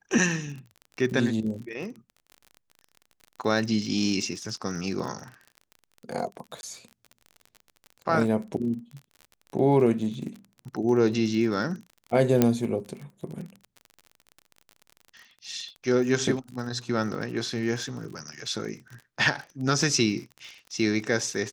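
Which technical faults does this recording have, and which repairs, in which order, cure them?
surface crackle 37 per second −35 dBFS
0:06.61–0:06.63: drop-out 21 ms
0:12.42: click −6 dBFS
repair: click removal
repair the gap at 0:06.61, 21 ms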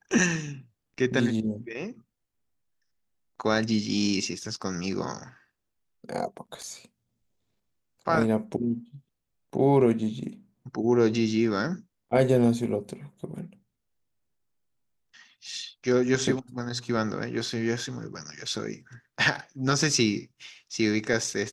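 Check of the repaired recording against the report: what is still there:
none of them is left

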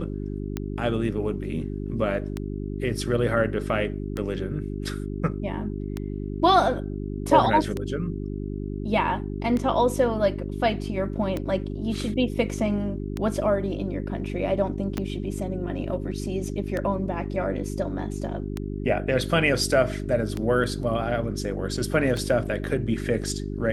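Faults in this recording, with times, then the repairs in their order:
mains hum 50 Hz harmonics 8 −31 dBFS
scratch tick 33 1/3 rpm −15 dBFS
0:14.98: click −15 dBFS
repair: click removal
hum removal 50 Hz, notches 8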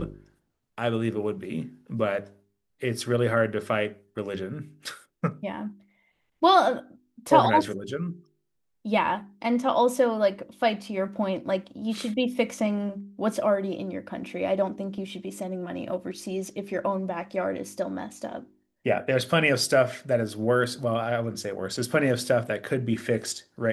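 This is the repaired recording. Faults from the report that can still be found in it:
0:14.98: click

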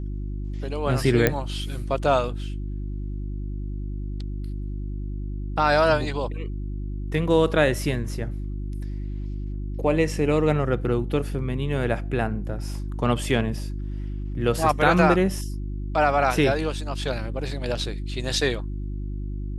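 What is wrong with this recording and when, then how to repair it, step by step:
mains hum 50 Hz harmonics 7 −30 dBFS
0:01.27: click −5 dBFS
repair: click removal
hum removal 50 Hz, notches 7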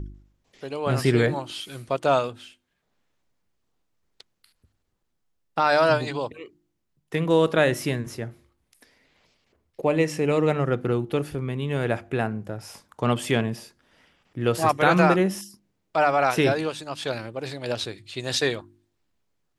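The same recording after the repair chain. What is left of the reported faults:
none of them is left

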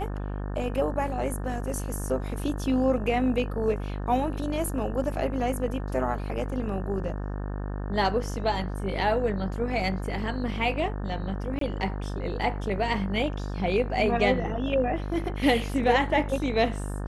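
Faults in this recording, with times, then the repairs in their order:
mains buzz 50 Hz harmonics 36 −32 dBFS
0:11.59–0:11.61: drop-out 23 ms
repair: hum removal 50 Hz, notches 36
repair the gap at 0:11.59, 23 ms

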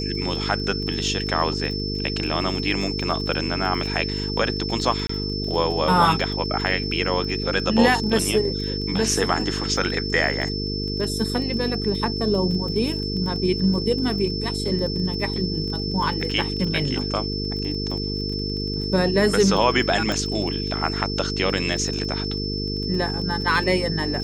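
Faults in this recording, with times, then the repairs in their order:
mains buzz 50 Hz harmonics 9 −28 dBFS
surface crackle 21 per second −30 dBFS
whistle 5,300 Hz −29 dBFS
0:05.07–0:05.09: drop-out 24 ms
0:20.12: click −11 dBFS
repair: click removal
notch filter 5,300 Hz, Q 30
hum removal 50 Hz, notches 9
repair the gap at 0:05.07, 24 ms

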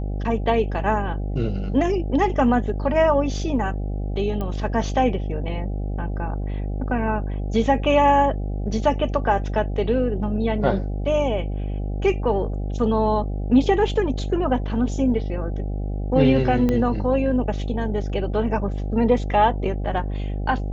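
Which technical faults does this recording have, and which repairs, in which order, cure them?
mains buzz 50 Hz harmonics 16 −26 dBFS
0:04.41: click −17 dBFS
0:16.69: click −11 dBFS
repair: click removal
hum removal 50 Hz, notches 16

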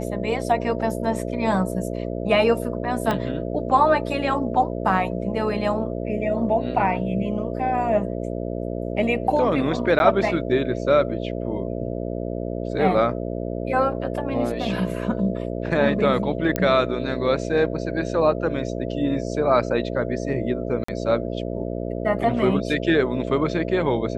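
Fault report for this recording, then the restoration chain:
mains buzz 60 Hz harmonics 11 −28 dBFS
0:03.11: click −11 dBFS
0:09.99–0:10.00: drop-out 11 ms
0:16.56: click −8 dBFS
0:20.84–0:20.88: drop-out 44 ms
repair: click removal
hum removal 60 Hz, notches 11
repair the gap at 0:09.99, 11 ms
repair the gap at 0:20.84, 44 ms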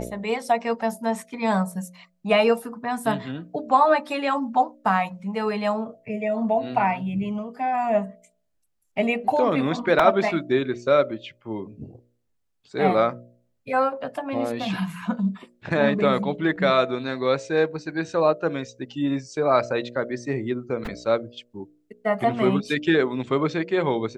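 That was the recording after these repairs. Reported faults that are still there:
0:03.11: click

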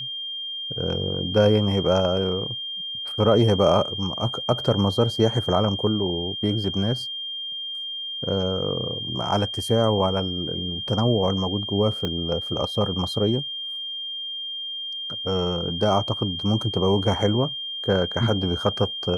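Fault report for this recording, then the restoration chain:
whistle 3,200 Hz −29 dBFS
0:12.05: click −14 dBFS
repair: click removal
notch filter 3,200 Hz, Q 30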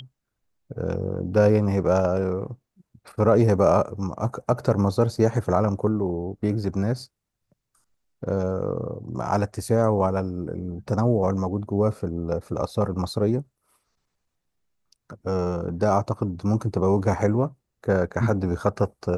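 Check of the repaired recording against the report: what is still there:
0:12.05: click

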